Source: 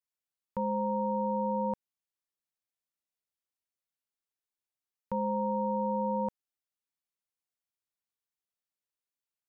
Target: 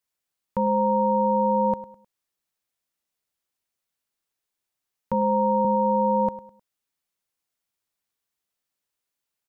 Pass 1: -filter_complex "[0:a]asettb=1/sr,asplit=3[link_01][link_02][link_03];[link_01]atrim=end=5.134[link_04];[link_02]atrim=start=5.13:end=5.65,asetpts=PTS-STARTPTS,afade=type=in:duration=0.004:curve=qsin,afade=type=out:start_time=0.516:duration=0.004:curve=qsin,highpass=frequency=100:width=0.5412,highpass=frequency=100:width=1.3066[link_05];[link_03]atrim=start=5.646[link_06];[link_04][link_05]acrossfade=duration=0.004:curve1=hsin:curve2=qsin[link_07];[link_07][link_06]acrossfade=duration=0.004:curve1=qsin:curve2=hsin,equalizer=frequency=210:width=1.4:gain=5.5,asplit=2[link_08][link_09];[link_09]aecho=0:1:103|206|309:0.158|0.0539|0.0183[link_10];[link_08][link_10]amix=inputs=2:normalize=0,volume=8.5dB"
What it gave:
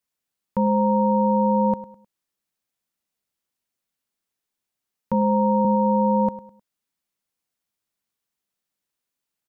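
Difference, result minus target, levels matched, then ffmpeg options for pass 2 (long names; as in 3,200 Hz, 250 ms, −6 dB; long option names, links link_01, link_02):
250 Hz band +3.5 dB
-filter_complex "[0:a]asettb=1/sr,asplit=3[link_01][link_02][link_03];[link_01]atrim=end=5.134[link_04];[link_02]atrim=start=5.13:end=5.65,asetpts=PTS-STARTPTS,afade=type=in:duration=0.004:curve=qsin,afade=type=out:start_time=0.516:duration=0.004:curve=qsin,highpass=frequency=100:width=0.5412,highpass=frequency=100:width=1.3066[link_05];[link_03]atrim=start=5.646[link_06];[link_04][link_05]acrossfade=duration=0.004:curve1=hsin:curve2=qsin[link_07];[link_07][link_06]acrossfade=duration=0.004:curve1=qsin:curve2=hsin,asplit=2[link_08][link_09];[link_09]aecho=0:1:103|206|309:0.158|0.0539|0.0183[link_10];[link_08][link_10]amix=inputs=2:normalize=0,volume=8.5dB"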